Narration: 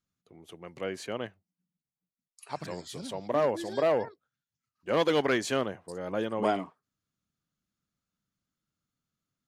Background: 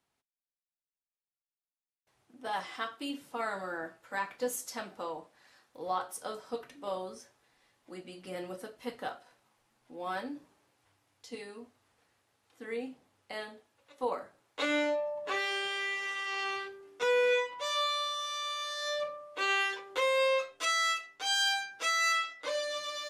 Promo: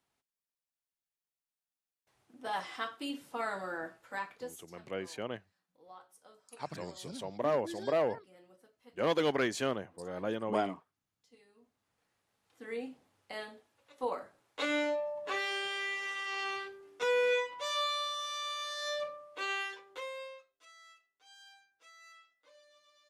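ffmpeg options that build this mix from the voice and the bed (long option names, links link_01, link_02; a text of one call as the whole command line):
ffmpeg -i stem1.wav -i stem2.wav -filter_complex "[0:a]adelay=4100,volume=-4dB[link_01];[1:a]volume=17dB,afade=type=out:start_time=3.97:duration=0.68:silence=0.112202,afade=type=in:start_time=11.53:duration=1.26:silence=0.125893,afade=type=out:start_time=18.91:duration=1.52:silence=0.0473151[link_02];[link_01][link_02]amix=inputs=2:normalize=0" out.wav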